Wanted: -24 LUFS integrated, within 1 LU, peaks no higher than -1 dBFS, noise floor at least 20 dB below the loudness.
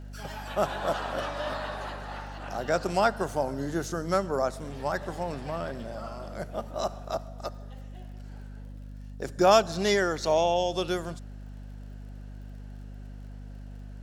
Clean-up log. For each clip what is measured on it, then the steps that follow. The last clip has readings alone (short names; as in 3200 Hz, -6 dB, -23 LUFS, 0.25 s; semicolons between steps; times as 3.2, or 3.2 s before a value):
ticks 43/s; hum 50 Hz; harmonics up to 250 Hz; hum level -39 dBFS; loudness -29.0 LUFS; peak -7.5 dBFS; loudness target -24.0 LUFS
-> de-click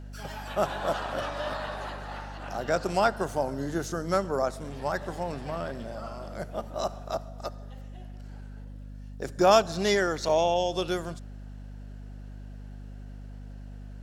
ticks 0.36/s; hum 50 Hz; harmonics up to 250 Hz; hum level -39 dBFS
-> de-hum 50 Hz, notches 5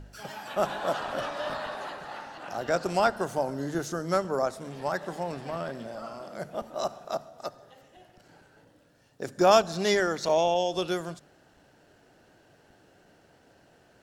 hum none; loudness -29.0 LUFS; peak -7.5 dBFS; loudness target -24.0 LUFS
-> gain +5 dB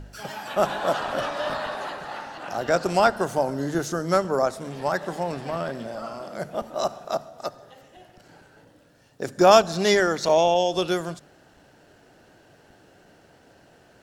loudness -24.0 LUFS; peak -2.5 dBFS; noise floor -56 dBFS